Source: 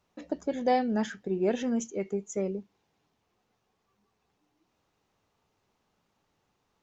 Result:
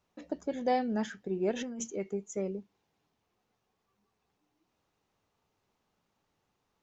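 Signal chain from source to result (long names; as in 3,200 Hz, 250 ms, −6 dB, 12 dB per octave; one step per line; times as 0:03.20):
0:01.51–0:01.96: compressor whose output falls as the input rises −34 dBFS, ratio −1
level −3.5 dB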